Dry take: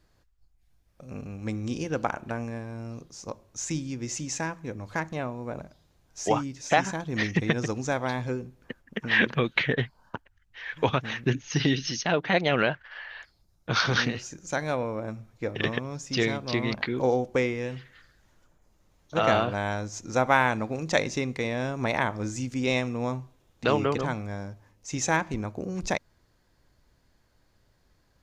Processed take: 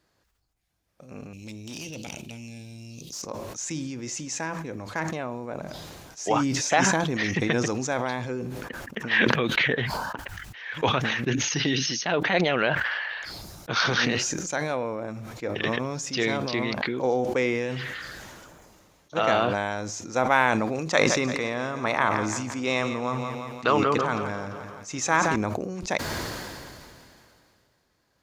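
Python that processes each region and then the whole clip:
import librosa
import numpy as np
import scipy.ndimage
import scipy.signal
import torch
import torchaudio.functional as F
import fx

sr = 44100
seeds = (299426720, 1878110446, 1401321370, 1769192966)

y = fx.chain(x, sr, fx.curve_eq(hz=(130.0, 390.0, 1500.0, 2700.0), db=(0, -7, -26, 7)),
    fx.tube_stage(drive_db=30.0, bias=0.35),
    fx.env_flatten(amount_pct=70), at=(1.33, 3.22))
y = fx.chain(y, sr, fx.peak_eq(hz=1200.0, db=9.0, octaves=0.48),
    fx.echo_feedback(ms=171, feedback_pct=54, wet_db=-13.5), at=(20.9, 25.36))
y = fx.highpass(y, sr, hz=230.0, slope=6)
y = fx.sustainer(y, sr, db_per_s=24.0)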